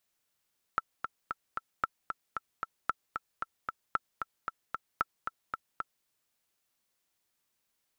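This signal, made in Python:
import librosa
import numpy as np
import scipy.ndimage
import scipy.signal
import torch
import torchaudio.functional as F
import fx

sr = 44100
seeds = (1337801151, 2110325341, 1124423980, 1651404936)

y = fx.click_track(sr, bpm=227, beats=4, bars=5, hz=1330.0, accent_db=6.5, level_db=-14.0)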